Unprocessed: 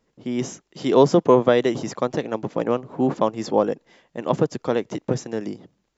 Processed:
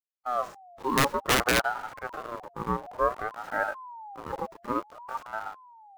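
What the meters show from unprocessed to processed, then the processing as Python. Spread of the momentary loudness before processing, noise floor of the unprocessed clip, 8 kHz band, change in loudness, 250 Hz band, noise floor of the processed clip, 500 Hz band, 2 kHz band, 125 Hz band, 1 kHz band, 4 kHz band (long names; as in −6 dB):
15 LU, −73 dBFS, can't be measured, −7.5 dB, −13.5 dB, −59 dBFS, −13.0 dB, +5.5 dB, −10.5 dB, −2.0 dB, +2.0 dB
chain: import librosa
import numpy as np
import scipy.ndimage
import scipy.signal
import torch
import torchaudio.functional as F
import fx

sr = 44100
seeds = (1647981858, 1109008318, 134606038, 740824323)

y = fx.delta_hold(x, sr, step_db=-30.0)
y = fx.high_shelf(y, sr, hz=2700.0, db=-7.0)
y = fx.hpss(y, sr, part='percussive', gain_db=-18)
y = (np.mod(10.0 ** (12.5 / 20.0) * y + 1.0, 2.0) - 1.0) / 10.0 ** (12.5 / 20.0)
y = fx.ring_lfo(y, sr, carrier_hz=880.0, swing_pct=25, hz=0.56)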